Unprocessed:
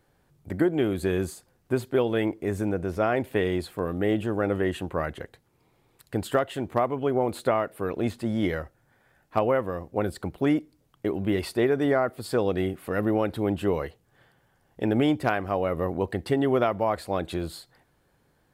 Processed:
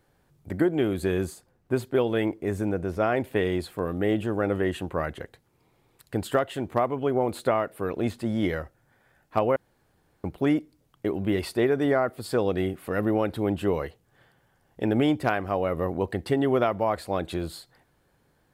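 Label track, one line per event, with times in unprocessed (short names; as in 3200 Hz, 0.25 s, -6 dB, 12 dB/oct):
1.140000	3.500000	mismatched tape noise reduction decoder only
9.560000	10.240000	room tone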